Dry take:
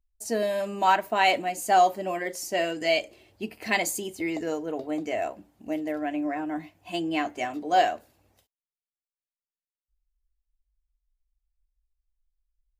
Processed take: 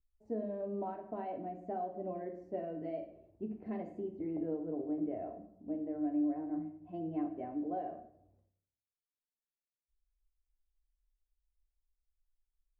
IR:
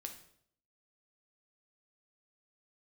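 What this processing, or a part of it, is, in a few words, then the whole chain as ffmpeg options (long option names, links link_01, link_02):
television next door: -filter_complex "[0:a]acompressor=threshold=-24dB:ratio=4,lowpass=460[link_01];[1:a]atrim=start_sample=2205[link_02];[link_01][link_02]afir=irnorm=-1:irlink=0,volume=-1dB"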